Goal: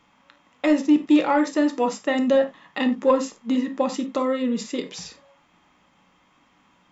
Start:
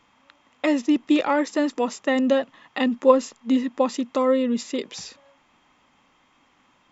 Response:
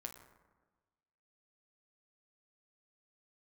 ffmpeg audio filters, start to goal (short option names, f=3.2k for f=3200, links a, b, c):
-filter_complex "[0:a]equalizer=f=160:w=2.2:g=5.5[a];[1:a]atrim=start_sample=2205,atrim=end_sample=4410[b];[a][b]afir=irnorm=-1:irlink=0,acontrast=85,volume=-3dB"